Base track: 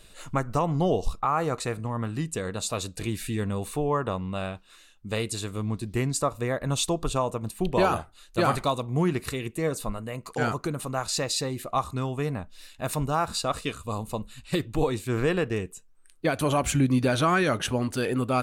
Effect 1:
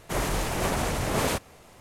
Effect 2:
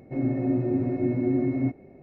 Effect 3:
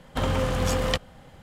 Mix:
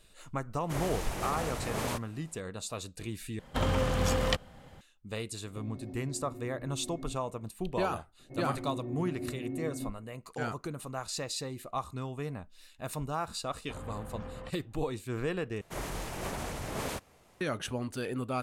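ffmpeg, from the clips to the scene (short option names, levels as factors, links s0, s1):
-filter_complex "[1:a]asplit=2[s0][s1];[3:a]asplit=2[s2][s3];[2:a]asplit=2[s4][s5];[0:a]volume=0.376[s6];[s4]acompressor=threshold=0.0224:ratio=6:attack=3.2:release=140:knee=1:detection=peak[s7];[s3]lowpass=1800[s8];[s6]asplit=3[s9][s10][s11];[s9]atrim=end=3.394[s12];[s2]atrim=end=1.42,asetpts=PTS-STARTPTS,volume=0.668[s13];[s10]atrim=start=4.806:end=15.614[s14];[s1]atrim=end=1.8,asetpts=PTS-STARTPTS,volume=0.316[s15];[s11]atrim=start=17.406[s16];[s0]atrim=end=1.8,asetpts=PTS-STARTPTS,volume=0.376,afade=t=in:d=0.004:c=hsin,afade=t=out:st=1.796:d=0.004:c=hsin,adelay=600[s17];[s7]atrim=end=2.02,asetpts=PTS-STARTPTS,volume=0.335,afade=t=in:d=0.004:c=hsin,afade=t=out:st=2.016:d=0.004:c=hsin,adelay=240345S[s18];[s5]atrim=end=2.02,asetpts=PTS-STARTPTS,volume=0.211,afade=t=in:d=0.004:c=hsin,afade=t=out:st=2.016:d=0.004:c=hsin,adelay=8190[s19];[s8]atrim=end=1.42,asetpts=PTS-STARTPTS,volume=0.126,afade=t=in:d=0.004:c=hsin,afade=t=out:st=1.416:d=0.004:c=hsin,adelay=13530[s20];[s12][s13]acrossfade=d=0.004:c1=hsin:c2=hsin[s21];[s21][s14]acrossfade=d=0.004:c1=hsin:c2=hsin[s22];[s22][s15]acrossfade=d=0.004:c1=hsin:c2=hsin[s23];[s23][s16]acrossfade=d=0.004:c1=hsin:c2=hsin[s24];[s24][s17][s18][s19][s20]amix=inputs=5:normalize=0"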